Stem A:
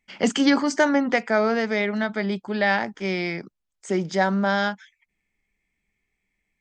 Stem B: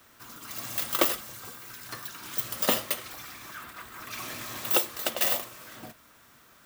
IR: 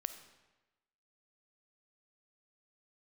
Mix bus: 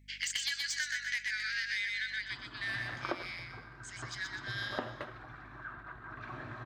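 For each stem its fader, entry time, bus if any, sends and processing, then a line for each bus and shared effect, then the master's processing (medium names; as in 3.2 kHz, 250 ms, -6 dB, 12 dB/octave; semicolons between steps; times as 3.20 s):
1.93 s -5.5 dB -> 2.50 s -15.5 dB, 0.00 s, no send, echo send -4 dB, steep high-pass 1.8 kHz 48 dB/octave; tilt EQ +2.5 dB/octave; saturation -18 dBFS, distortion -15 dB
-1.0 dB, 2.10 s, no send, no echo send, low-pass 1 kHz 12 dB/octave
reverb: none
echo: feedback delay 123 ms, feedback 37%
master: graphic EQ with 31 bands 125 Hz +8 dB, 200 Hz -10 dB, 500 Hz -8 dB, 1.6 kHz +11 dB, 4 kHz +7 dB; hum 50 Hz, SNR 24 dB; compression 6:1, threshold -32 dBFS, peak gain reduction 9.5 dB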